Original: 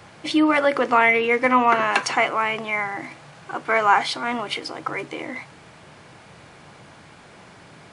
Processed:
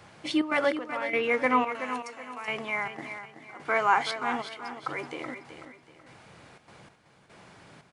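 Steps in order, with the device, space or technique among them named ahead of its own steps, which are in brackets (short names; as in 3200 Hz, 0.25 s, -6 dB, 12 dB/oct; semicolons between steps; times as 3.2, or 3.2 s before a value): 1.72–2.48 pre-emphasis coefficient 0.8; trance gate with a delay (step gate "xxxx.xx....x" 146 bpm -12 dB; feedback echo 0.377 s, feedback 35%, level -10 dB); gain -6 dB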